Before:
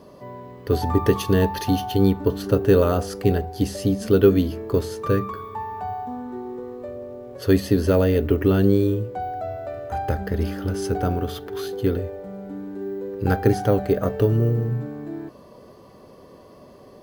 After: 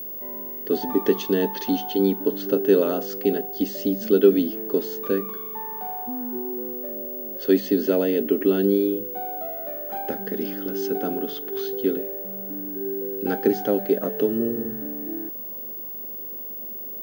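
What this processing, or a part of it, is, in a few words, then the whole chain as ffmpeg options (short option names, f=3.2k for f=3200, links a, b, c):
old television with a line whistle: -af "highpass=f=210:w=0.5412,highpass=f=210:w=1.3066,equalizer=f=230:t=q:w=4:g=8,equalizer=f=370:t=q:w=4:g=5,equalizer=f=1.1k:t=q:w=4:g=-8,equalizer=f=3.3k:t=q:w=4:g=4,lowpass=f=7.3k:w=0.5412,lowpass=f=7.3k:w=1.3066,aeval=exprs='val(0)+0.0398*sin(2*PI*15625*n/s)':c=same,volume=-3.5dB"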